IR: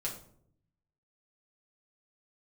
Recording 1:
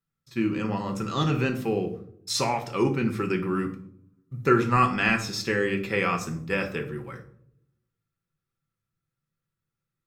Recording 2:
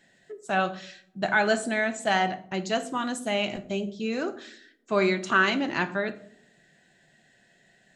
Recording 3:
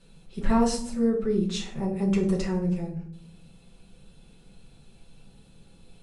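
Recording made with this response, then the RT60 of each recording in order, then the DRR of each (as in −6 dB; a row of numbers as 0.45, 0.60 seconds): 3; 0.65, 0.65, 0.65 seconds; 3.0, 7.5, −4.0 decibels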